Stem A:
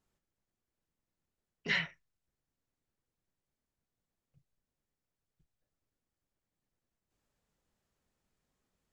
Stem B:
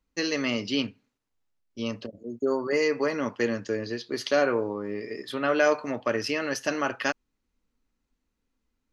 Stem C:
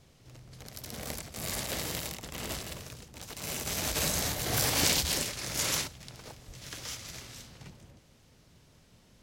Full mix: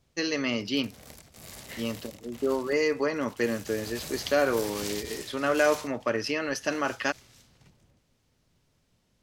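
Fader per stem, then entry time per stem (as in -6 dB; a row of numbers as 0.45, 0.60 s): -14.0, -1.0, -10.0 dB; 0.00, 0.00, 0.00 s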